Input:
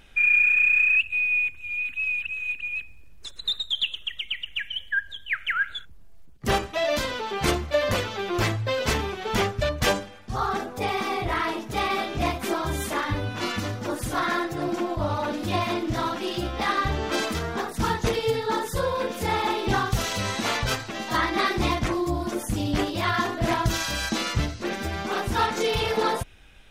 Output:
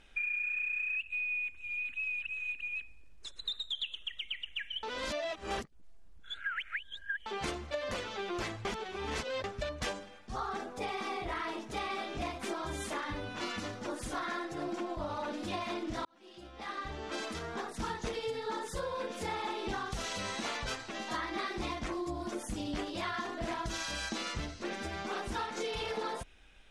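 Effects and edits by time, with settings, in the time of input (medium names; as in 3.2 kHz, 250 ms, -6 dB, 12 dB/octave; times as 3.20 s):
4.83–7.26 s: reverse
8.65–9.44 s: reverse
16.05–17.86 s: fade in
whole clip: low-pass 10 kHz 24 dB/octave; peaking EQ 110 Hz -9.5 dB 1 oct; compression, threshold -26 dBFS; trim -7 dB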